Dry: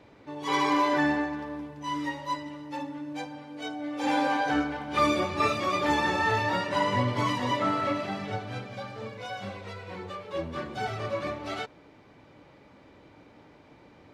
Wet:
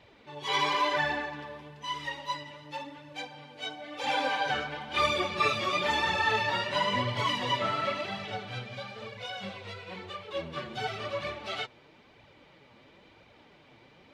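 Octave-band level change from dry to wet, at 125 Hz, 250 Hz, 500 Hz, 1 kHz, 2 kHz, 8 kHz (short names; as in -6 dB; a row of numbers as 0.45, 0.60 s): -4.5, -11.0, -3.0, -2.5, +0.5, -1.5 dB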